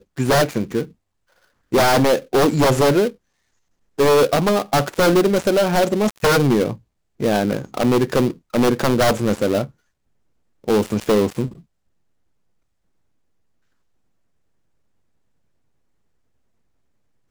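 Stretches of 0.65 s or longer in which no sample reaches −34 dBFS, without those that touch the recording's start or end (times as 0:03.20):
0:00.85–0:01.72
0:03.12–0:03.99
0:09.67–0:10.64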